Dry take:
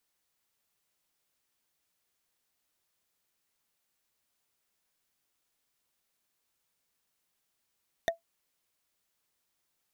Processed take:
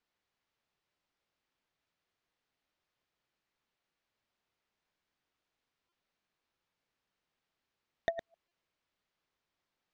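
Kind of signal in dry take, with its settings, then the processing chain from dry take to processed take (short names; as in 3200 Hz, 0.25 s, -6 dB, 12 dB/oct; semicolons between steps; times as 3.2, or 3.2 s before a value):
wood hit, lowest mode 669 Hz, decay 0.13 s, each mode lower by 3 dB, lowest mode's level -20.5 dB
reverse delay 0.103 s, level -9 dB; air absorption 180 m; stuck buffer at 5.89/8.48, samples 128, times 10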